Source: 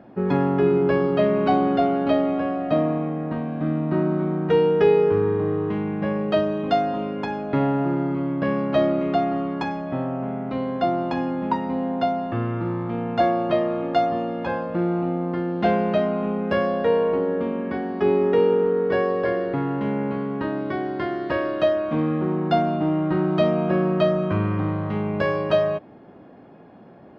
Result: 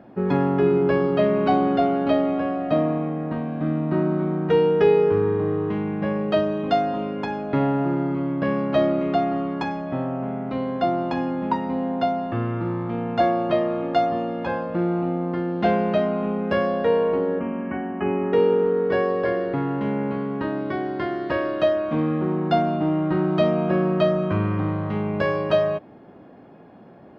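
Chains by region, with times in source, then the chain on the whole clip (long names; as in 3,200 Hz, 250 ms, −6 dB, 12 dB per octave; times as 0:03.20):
0:17.39–0:18.33: linear-phase brick-wall low-pass 3,100 Hz + parametric band 450 Hz −14 dB 0.25 octaves
whole clip: no processing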